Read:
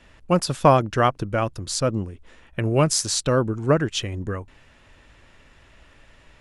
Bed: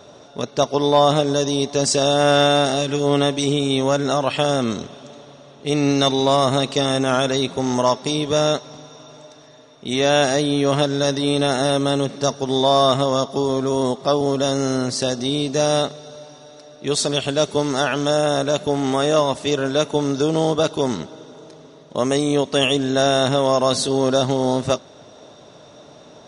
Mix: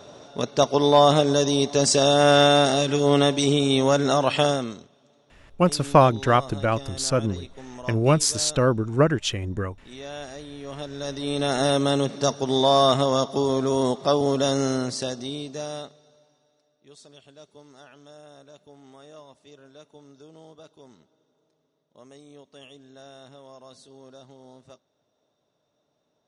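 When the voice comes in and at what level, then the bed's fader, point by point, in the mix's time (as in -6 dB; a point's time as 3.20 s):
5.30 s, 0.0 dB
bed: 4.46 s -1 dB
4.90 s -20.5 dB
10.58 s -20.5 dB
11.63 s -2.5 dB
14.62 s -2.5 dB
16.90 s -29.5 dB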